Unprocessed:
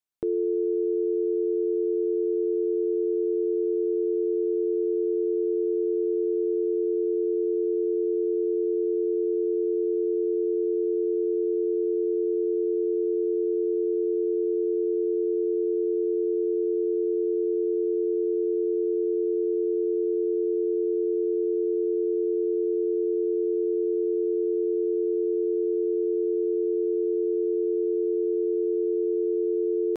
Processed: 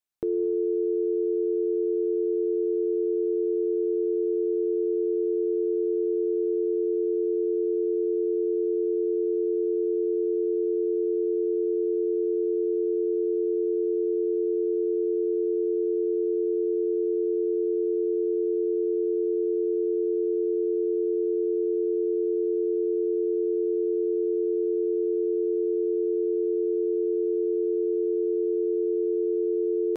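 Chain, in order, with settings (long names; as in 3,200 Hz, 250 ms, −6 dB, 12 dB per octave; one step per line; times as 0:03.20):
reverb whose tail is shaped and stops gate 330 ms flat, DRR 11.5 dB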